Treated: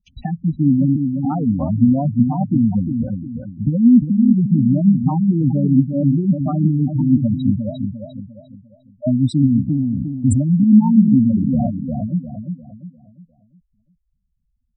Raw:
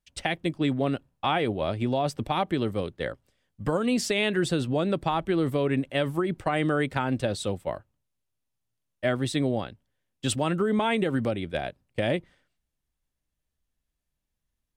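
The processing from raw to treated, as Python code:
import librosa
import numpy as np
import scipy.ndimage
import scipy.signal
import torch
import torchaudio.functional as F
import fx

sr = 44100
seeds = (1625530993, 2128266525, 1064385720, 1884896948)

y = fx.spec_expand(x, sr, power=3.5, at=(7.56, 9.07))
y = fx.low_shelf_res(y, sr, hz=300.0, db=7.5, q=3.0)
y = fx.over_compress(y, sr, threshold_db=-25.0, ratio=-0.5, at=(11.52, 12.12), fade=0.02)
y = fx.echo_feedback(y, sr, ms=351, feedback_pct=38, wet_db=-6.0)
y = fx.spec_gate(y, sr, threshold_db=-10, keep='strong')
y = fx.sustainer(y, sr, db_per_s=24.0, at=(9.67, 10.4), fade=0.02)
y = F.gain(torch.from_numpy(y), 4.0).numpy()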